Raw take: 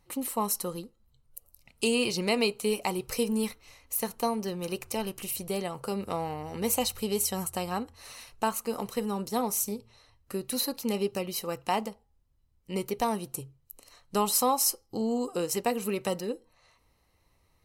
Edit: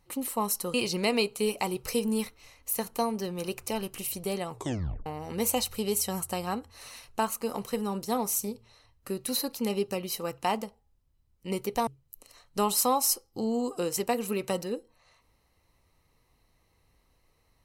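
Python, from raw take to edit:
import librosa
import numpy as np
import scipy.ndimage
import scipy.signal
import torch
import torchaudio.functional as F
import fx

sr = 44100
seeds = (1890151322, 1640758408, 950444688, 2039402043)

y = fx.edit(x, sr, fx.cut(start_s=0.74, length_s=1.24),
    fx.tape_stop(start_s=5.75, length_s=0.55),
    fx.cut(start_s=13.11, length_s=0.33), tone=tone)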